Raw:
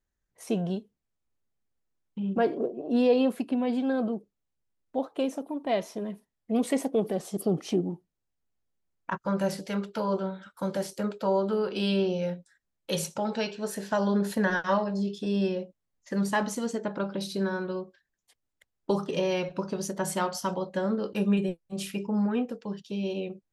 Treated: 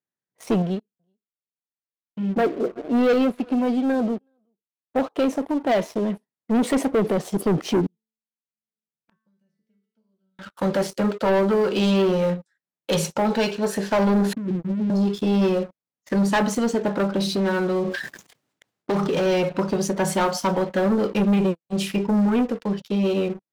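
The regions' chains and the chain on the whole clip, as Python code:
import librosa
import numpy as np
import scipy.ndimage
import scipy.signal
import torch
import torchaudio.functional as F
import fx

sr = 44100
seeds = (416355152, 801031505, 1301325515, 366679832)

y = fx.chain(x, sr, fx.echo_single(ms=373, db=-21.5),
    fx.upward_expand(threshold_db=-44.0, expansion=1.5), at=(0.62, 4.96))
y = fx.chain(y, sr, fx.tone_stack(knobs='10-0-1'),
    fx.comb_fb(f0_hz=220.0, decay_s=0.56, harmonics='all', damping=0.0, mix_pct=90),
    fx.band_squash(depth_pct=100), at=(7.86, 10.39))
y = fx.chain(y, sr, fx.cheby2_bandstop(low_hz=1200.0, high_hz=9300.0, order=4, stop_db=70),
    fx.over_compress(threshold_db=-35.0, ratio=-1.0), at=(14.33, 14.9))
y = fx.chain(y, sr, fx.overload_stage(gain_db=28.0),
    fx.sustainer(db_per_s=40.0), at=(17.17, 19.26))
y = scipy.signal.sosfilt(scipy.signal.butter(4, 130.0, 'highpass', fs=sr, output='sos'), y)
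y = fx.high_shelf(y, sr, hz=6500.0, db=-10.5)
y = fx.leveller(y, sr, passes=3)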